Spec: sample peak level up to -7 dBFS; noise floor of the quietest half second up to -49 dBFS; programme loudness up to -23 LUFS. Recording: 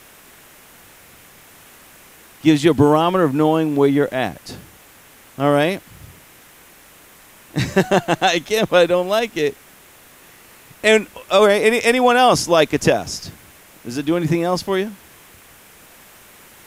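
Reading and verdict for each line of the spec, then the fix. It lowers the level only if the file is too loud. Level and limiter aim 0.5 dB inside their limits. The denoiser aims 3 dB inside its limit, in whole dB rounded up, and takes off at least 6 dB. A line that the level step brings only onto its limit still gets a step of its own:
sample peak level -2.0 dBFS: fail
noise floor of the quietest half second -47 dBFS: fail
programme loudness -17.0 LUFS: fail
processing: trim -6.5 dB

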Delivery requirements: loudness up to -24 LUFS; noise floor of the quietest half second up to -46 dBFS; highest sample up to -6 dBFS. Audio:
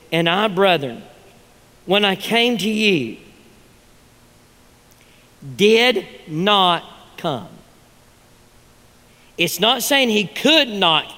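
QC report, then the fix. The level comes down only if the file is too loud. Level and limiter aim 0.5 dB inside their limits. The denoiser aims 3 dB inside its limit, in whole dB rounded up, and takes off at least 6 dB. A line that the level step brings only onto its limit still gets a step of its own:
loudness -16.5 LUFS: fail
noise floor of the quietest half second -51 dBFS: pass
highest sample -2.0 dBFS: fail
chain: trim -8 dB

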